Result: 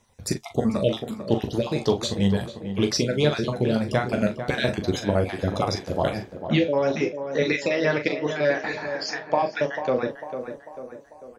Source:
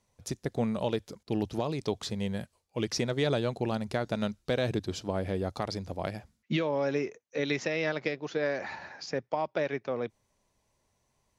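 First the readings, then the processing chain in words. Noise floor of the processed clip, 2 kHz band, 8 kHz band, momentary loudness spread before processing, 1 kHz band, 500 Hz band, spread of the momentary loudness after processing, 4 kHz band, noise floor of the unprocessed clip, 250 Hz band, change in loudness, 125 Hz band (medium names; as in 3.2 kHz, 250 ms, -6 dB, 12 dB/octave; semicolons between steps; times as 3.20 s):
-47 dBFS, +7.5 dB, +8.0 dB, 8 LU, +8.0 dB, +7.5 dB, 8 LU, +8.0 dB, -76 dBFS, +8.0 dB, +7.5 dB, +7.5 dB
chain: random holes in the spectrogram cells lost 36%; in parallel at +2 dB: gain riding within 4 dB 0.5 s; on the sum: flange 0.38 Hz, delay 8.3 ms, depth 9.7 ms, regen -44%; doubling 40 ms -8.5 dB; tape echo 446 ms, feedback 57%, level -8 dB, low-pass 1.7 kHz; trim +5.5 dB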